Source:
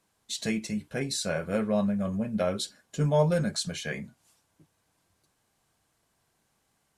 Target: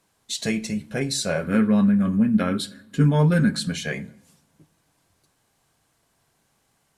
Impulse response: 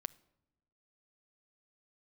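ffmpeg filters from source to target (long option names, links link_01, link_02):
-filter_complex "[0:a]asettb=1/sr,asplit=3[link_01][link_02][link_03];[link_01]atrim=end=1.434[link_04];[link_02]atrim=start=1.43:end=3.72,asetpts=PTS-STARTPTS,afade=type=in:duration=0.004:curve=qsin,afade=type=out:start_time=2.286:duration=0.004:curve=qsin,equalizer=frequency=250:width_type=o:width=0.67:gain=11,equalizer=frequency=630:width_type=o:width=0.67:gain=-11,equalizer=frequency=1600:width_type=o:width=0.67:gain=6,equalizer=frequency=6300:width_type=o:width=0.67:gain=-9[link_05];[link_03]atrim=start=3.716[link_06];[link_04][link_05]acrossfade=duration=0.004:curve1=hsin:curve2=qsin[link_07];[link_07][link_06]acrossfade=duration=0.004:curve1=qsin:curve2=hsin[link_08];[1:a]atrim=start_sample=2205,asetrate=41013,aresample=44100[link_09];[link_08][link_09]afir=irnorm=-1:irlink=0,volume=7.5dB"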